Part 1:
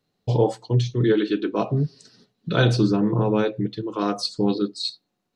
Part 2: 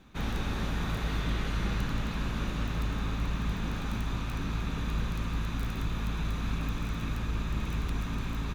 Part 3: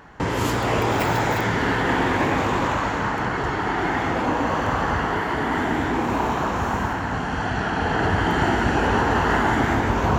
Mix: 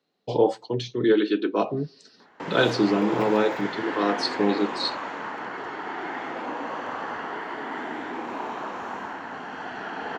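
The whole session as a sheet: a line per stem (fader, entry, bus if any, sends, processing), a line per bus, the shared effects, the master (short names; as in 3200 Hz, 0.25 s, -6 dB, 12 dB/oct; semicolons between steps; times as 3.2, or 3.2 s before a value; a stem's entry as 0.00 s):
+1.0 dB, 0.00 s, no send, dry
off
-8.5 dB, 2.20 s, no send, low shelf 94 Hz -8 dB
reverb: off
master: three-band isolator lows -22 dB, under 210 Hz, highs -13 dB, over 5700 Hz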